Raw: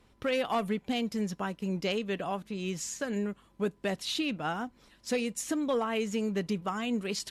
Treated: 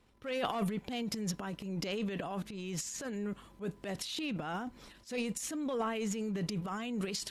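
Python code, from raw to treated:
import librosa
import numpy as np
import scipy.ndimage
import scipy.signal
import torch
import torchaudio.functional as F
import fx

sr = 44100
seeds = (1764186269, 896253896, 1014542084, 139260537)

y = fx.transient(x, sr, attack_db=-7, sustain_db=12)
y = F.gain(torch.from_numpy(y), -5.5).numpy()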